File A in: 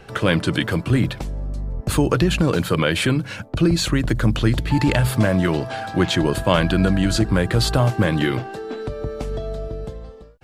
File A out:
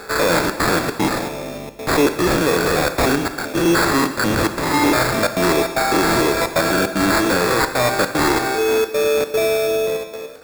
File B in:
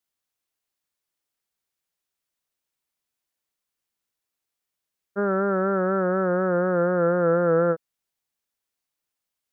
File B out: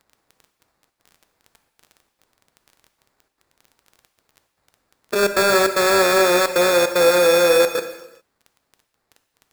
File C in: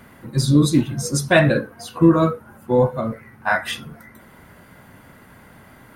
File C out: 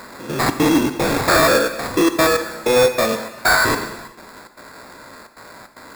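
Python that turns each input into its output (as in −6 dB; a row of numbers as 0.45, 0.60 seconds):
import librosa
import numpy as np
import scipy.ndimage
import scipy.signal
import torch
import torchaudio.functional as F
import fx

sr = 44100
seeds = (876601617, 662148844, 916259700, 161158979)

y = fx.spec_steps(x, sr, hold_ms=100)
y = scipy.signal.sosfilt(scipy.signal.butter(2, 380.0, 'highpass', fs=sr, output='sos'), y)
y = fx.notch(y, sr, hz=810.0, q=12.0)
y = fx.dynamic_eq(y, sr, hz=2000.0, q=1.8, threshold_db=-44.0, ratio=4.0, max_db=6)
y = fx.rider(y, sr, range_db=3, speed_s=0.5)
y = fx.sample_hold(y, sr, seeds[0], rate_hz=3000.0, jitter_pct=0)
y = 10.0 ** (-24.0 / 20.0) * np.tanh(y / 10.0 ** (-24.0 / 20.0))
y = fx.dmg_crackle(y, sr, seeds[1], per_s=22.0, level_db=-46.0)
y = fx.step_gate(y, sr, bpm=151, pattern='xxxxx.xxx.xx', floor_db=-60.0, edge_ms=4.5)
y = fx.rev_gated(y, sr, seeds[2], gate_ms=430, shape='falling', drr_db=8.0)
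y = librosa.util.normalize(y) * 10.0 ** (-6 / 20.0)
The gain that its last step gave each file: +12.5, +13.0, +13.0 decibels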